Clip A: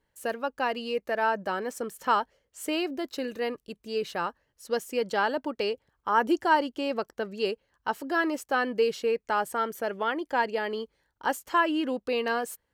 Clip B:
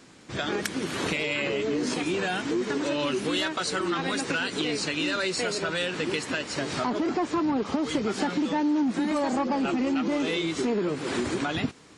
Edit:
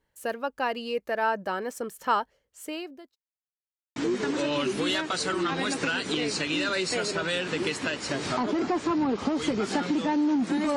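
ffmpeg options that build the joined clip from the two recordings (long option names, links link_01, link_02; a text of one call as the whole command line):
ffmpeg -i cue0.wav -i cue1.wav -filter_complex "[0:a]apad=whole_dur=10.76,atrim=end=10.76,asplit=2[link_01][link_02];[link_01]atrim=end=3.16,asetpts=PTS-STARTPTS,afade=type=out:start_time=1.89:duration=1.27:curve=qsin[link_03];[link_02]atrim=start=3.16:end=3.96,asetpts=PTS-STARTPTS,volume=0[link_04];[1:a]atrim=start=2.43:end=9.23,asetpts=PTS-STARTPTS,afade=type=in:duration=0.004:curve=hsin[link_05];[link_03][link_04][link_05]concat=n=3:v=0:a=1" out.wav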